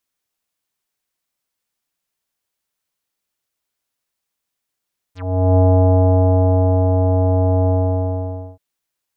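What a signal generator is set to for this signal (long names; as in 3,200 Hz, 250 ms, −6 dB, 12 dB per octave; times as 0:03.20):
subtractive voice square F#2 24 dB per octave, low-pass 730 Hz, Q 3.8, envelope 4 octaves, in 0.08 s, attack 416 ms, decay 1.32 s, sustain −3.5 dB, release 0.90 s, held 2.53 s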